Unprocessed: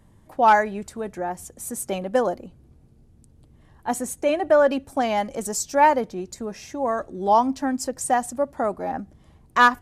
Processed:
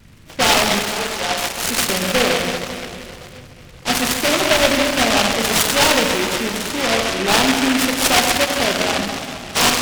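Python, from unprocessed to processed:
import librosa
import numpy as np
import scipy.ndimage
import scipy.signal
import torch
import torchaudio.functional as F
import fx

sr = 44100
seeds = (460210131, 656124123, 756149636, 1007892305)

p1 = fx.freq_compress(x, sr, knee_hz=1100.0, ratio=4.0)
p2 = fx.highpass(p1, sr, hz=520.0, slope=24, at=(0.79, 1.54))
p3 = fx.level_steps(p2, sr, step_db=21)
p4 = p2 + (p3 * librosa.db_to_amplitude(0.0))
p5 = 10.0 ** (-18.0 / 20.0) * np.tanh(p4 / 10.0 ** (-18.0 / 20.0))
p6 = p5 + 10.0 ** (-11.0 / 20.0) * np.pad(p5, (int(133 * sr / 1000.0), 0))[:len(p5)]
p7 = fx.rev_plate(p6, sr, seeds[0], rt60_s=2.9, hf_ratio=0.8, predelay_ms=0, drr_db=1.0)
p8 = fx.vibrato(p7, sr, rate_hz=0.35, depth_cents=6.4)
p9 = fx.noise_mod_delay(p8, sr, seeds[1], noise_hz=2000.0, depth_ms=0.24)
y = p9 * librosa.db_to_amplitude(4.5)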